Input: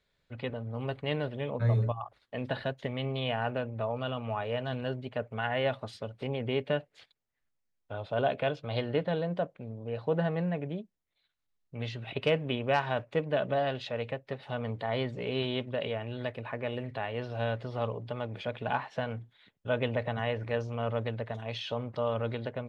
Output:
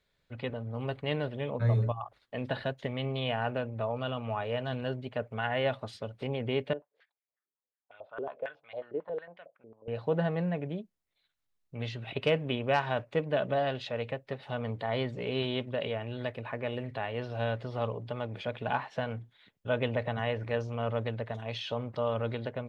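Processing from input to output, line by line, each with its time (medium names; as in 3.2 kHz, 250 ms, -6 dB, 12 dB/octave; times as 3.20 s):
6.73–9.88 s: step-sequenced band-pass 11 Hz 380–2200 Hz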